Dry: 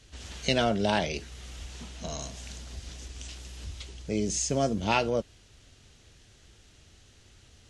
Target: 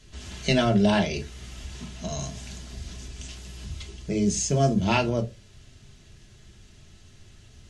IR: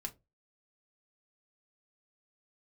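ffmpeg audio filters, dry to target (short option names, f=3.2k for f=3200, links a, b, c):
-filter_complex "[0:a]equalizer=f=110:w=0.89:g=6.5[a];[1:a]atrim=start_sample=2205[b];[a][b]afir=irnorm=-1:irlink=0,volume=4dB"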